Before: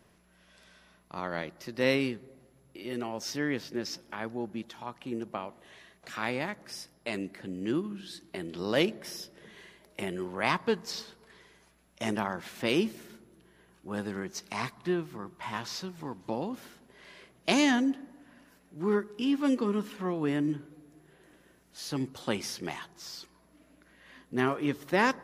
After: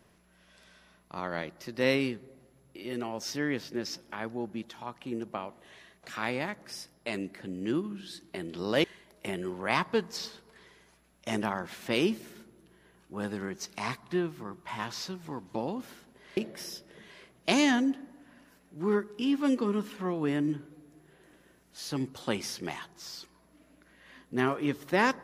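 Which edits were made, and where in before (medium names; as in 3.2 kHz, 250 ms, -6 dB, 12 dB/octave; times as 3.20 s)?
8.84–9.58 s: move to 17.11 s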